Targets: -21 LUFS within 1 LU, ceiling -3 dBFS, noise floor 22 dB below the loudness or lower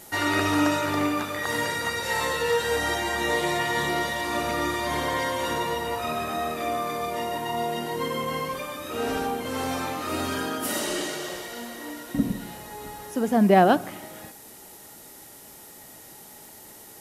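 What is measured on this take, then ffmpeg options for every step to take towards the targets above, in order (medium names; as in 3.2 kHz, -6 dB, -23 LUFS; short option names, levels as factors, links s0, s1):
noise floor -47 dBFS; noise floor target -48 dBFS; loudness -26.0 LUFS; peak level -5.5 dBFS; loudness target -21.0 LUFS
-> -af "afftdn=nr=6:nf=-47"
-af "volume=1.78,alimiter=limit=0.708:level=0:latency=1"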